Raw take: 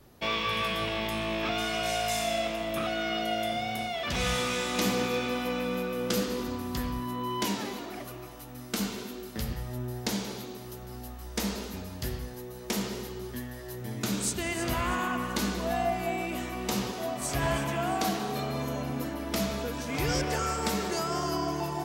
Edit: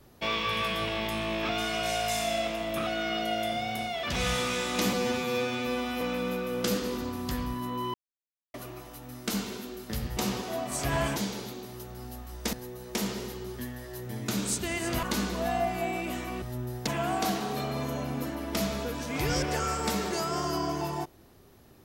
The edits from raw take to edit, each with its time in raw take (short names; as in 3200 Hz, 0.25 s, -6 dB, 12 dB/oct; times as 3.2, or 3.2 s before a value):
4.93–5.47 stretch 2×
7.4–8 mute
9.63–10.08 swap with 16.67–17.66
11.45–12.28 cut
14.78–15.28 cut